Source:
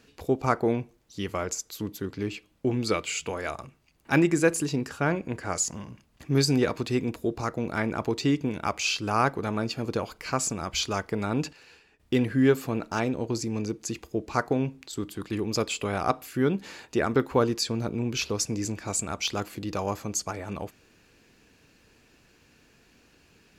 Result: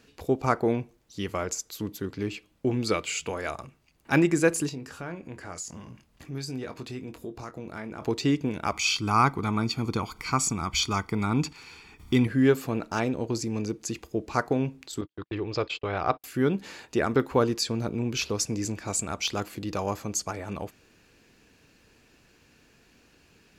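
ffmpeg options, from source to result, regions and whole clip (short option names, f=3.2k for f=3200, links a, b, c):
-filter_complex "[0:a]asettb=1/sr,asplit=3[a][b][c];[a]atrim=end=4.694[d];[b]atrim=start=4.69:end=8.02,asetpts=PTS-STARTPTS,afade=t=in:d=0.004:c=qsin,afade=t=out:st=3.326:d=0.004:c=qsin,acompressor=threshold=-42dB:ratio=2:attack=3.2:release=140:knee=1:detection=peak,asplit=2[e][f];[f]adelay=23,volume=-9.5dB[g];[e][g]amix=inputs=2:normalize=0,atrim=end_sample=146853[h];[c]atrim=start=8.016[i];[d][h]acrossfade=d=0.004:c1=hsin:c2=qsin[j];[j][i]acrossfade=d=0.004:c1=qsin:c2=hsin,asettb=1/sr,asplit=3[k][l][m];[k]atrim=end=8.724[n];[l]atrim=start=8.72:end=12.27,asetpts=PTS-STARTPTS,afade=t=in:d=0.004:c=qsin,afade=t=out:st=3.546:d=0.004:c=qsin,acompressor=mode=upward:threshold=-39dB:ratio=2.5:attack=3.2:release=140:knee=2.83:detection=peak,aecho=1:1:0.9:0.69,atrim=end_sample=156555[o];[m]atrim=start=12.266[p];[n][o]acrossfade=d=0.004:c1=hsin:c2=qsin[q];[q][p]acrossfade=d=0.004:c1=qsin:c2=hsin,asettb=1/sr,asplit=3[r][s][t];[r]atrim=end=15.014[u];[s]atrim=start=15.01:end=16.24,asetpts=PTS-STARTPTS,afade=t=in:d=0.004:c=qsin,afade=t=out:st=1.226:d=0.004:c=qsin,agate=range=-45dB:threshold=-36dB:ratio=16:release=100:detection=peak,lowpass=f=4.4k:w=0.5412,lowpass=f=4.4k:w=1.3066,equalizer=f=220:w=3.8:g=-13[v];[t]atrim=start=16.236[w];[u][v]acrossfade=d=0.004:c1=hsin:c2=qsin[x];[x][w]acrossfade=d=0.004:c1=qsin:c2=hsin"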